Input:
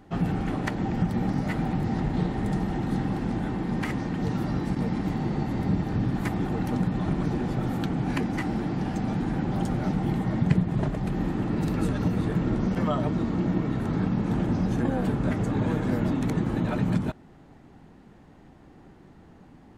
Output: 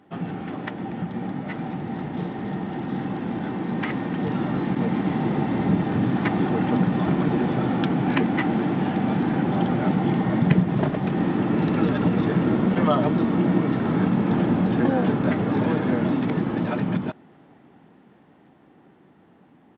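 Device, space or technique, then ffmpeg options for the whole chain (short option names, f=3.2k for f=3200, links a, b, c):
Bluetooth headset: -af "highpass=170,dynaudnorm=f=490:g=17:m=10dB,aresample=8000,aresample=44100,volume=-1.5dB" -ar 32000 -c:a sbc -b:a 64k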